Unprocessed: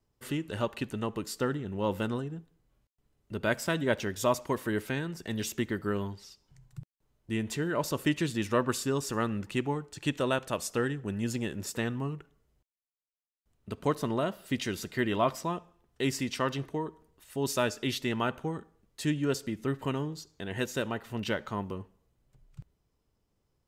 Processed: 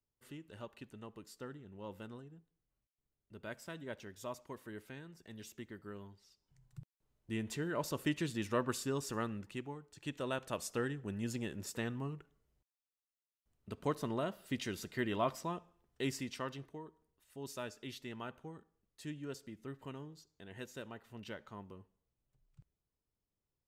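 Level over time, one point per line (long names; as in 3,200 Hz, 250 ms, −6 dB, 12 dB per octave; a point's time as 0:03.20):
0:06.22 −17 dB
0:06.79 −7 dB
0:09.15 −7 dB
0:09.78 −15 dB
0:10.54 −7 dB
0:16.03 −7 dB
0:16.80 −15 dB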